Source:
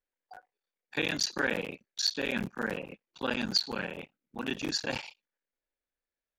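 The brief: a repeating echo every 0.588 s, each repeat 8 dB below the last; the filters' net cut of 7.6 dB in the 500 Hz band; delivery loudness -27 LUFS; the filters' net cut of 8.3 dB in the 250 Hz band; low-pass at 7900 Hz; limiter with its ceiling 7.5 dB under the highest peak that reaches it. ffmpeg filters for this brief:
-af "lowpass=7.9k,equalizer=f=250:t=o:g=-8.5,equalizer=f=500:t=o:g=-6.5,alimiter=limit=-23dB:level=0:latency=1,aecho=1:1:588|1176|1764|2352|2940:0.398|0.159|0.0637|0.0255|0.0102,volume=9dB"

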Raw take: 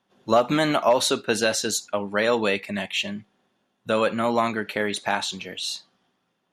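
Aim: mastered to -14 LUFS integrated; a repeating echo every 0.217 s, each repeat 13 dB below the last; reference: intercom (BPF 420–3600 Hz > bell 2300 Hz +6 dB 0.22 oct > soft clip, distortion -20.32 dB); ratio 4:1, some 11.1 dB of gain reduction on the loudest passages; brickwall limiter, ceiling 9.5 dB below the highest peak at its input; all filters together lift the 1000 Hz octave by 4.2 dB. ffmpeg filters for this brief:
-af "equalizer=f=1k:t=o:g=5.5,acompressor=threshold=-24dB:ratio=4,alimiter=limit=-18.5dB:level=0:latency=1,highpass=420,lowpass=3.6k,equalizer=f=2.3k:t=o:w=0.22:g=6,aecho=1:1:217|434|651:0.224|0.0493|0.0108,asoftclip=threshold=-21dB,volume=19dB"

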